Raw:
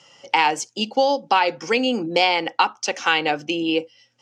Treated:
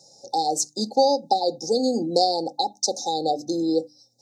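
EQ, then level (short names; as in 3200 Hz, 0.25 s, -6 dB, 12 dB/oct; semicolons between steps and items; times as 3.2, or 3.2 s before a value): brick-wall FIR band-stop 860–3600 Hz; high shelf 7500 Hz +11.5 dB; notches 50/100/150/200/250/300 Hz; 0.0 dB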